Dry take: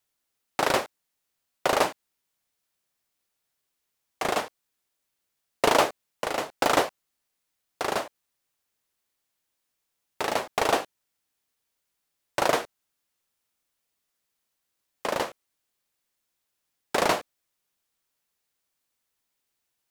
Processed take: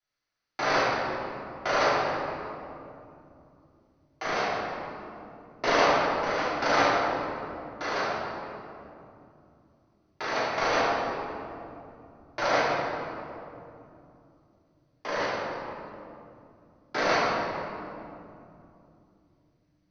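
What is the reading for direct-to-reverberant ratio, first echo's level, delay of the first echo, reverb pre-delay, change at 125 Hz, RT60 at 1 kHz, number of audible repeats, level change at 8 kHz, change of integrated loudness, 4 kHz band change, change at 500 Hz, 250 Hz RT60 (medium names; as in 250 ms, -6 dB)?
-12.0 dB, no echo, no echo, 3 ms, +3.0 dB, 2.5 s, no echo, -6.5 dB, -1.0 dB, -1.0 dB, +0.5 dB, 4.2 s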